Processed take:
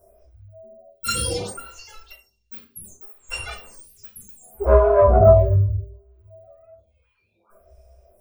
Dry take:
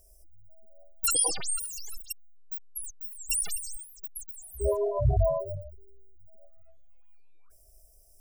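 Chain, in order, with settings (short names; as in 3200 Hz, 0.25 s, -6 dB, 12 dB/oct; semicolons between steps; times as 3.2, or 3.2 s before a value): one diode to ground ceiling -23 dBFS; notch 1800 Hz, Q 28; reverb RT60 0.45 s, pre-delay 3 ms, DRR -9 dB; photocell phaser 0.67 Hz; gain -3 dB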